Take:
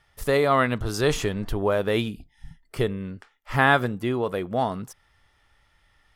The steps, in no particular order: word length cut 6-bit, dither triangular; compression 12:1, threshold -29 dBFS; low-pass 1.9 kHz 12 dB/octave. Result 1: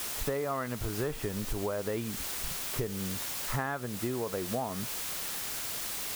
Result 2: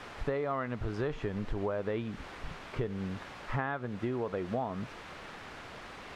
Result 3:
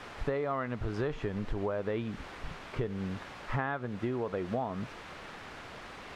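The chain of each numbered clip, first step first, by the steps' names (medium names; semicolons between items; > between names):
low-pass > word length cut > compression; word length cut > compression > low-pass; word length cut > low-pass > compression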